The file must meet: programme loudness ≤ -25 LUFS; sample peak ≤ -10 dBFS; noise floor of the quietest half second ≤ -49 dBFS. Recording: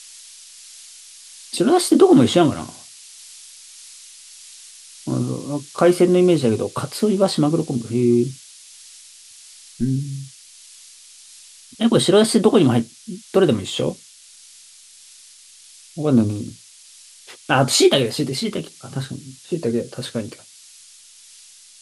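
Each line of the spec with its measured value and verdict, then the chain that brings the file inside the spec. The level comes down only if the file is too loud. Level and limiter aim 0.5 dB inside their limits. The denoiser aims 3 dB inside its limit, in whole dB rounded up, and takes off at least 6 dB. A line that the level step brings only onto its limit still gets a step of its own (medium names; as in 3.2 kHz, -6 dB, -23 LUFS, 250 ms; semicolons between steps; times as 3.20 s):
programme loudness -18.5 LUFS: fail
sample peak -2.5 dBFS: fail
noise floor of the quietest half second -46 dBFS: fail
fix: trim -7 dB; peak limiter -10.5 dBFS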